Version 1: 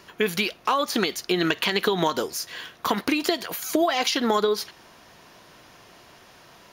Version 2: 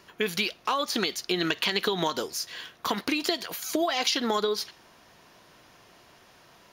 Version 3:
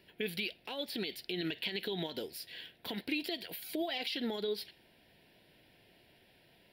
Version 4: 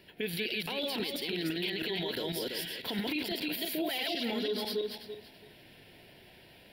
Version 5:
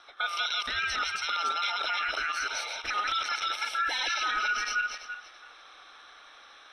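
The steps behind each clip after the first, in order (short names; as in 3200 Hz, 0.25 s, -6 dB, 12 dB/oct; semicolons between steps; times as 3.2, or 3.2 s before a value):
dynamic EQ 4500 Hz, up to +5 dB, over -41 dBFS, Q 0.83; gain -5 dB
limiter -18 dBFS, peak gain reduction 7.5 dB; fixed phaser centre 2800 Hz, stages 4; gain -5.5 dB
regenerating reverse delay 0.166 s, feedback 43%, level -0.5 dB; limiter -30 dBFS, peak gain reduction 10 dB; gain +5.5 dB
band-swap scrambler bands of 1000 Hz; LPF 7300 Hz 24 dB/oct; gain +4 dB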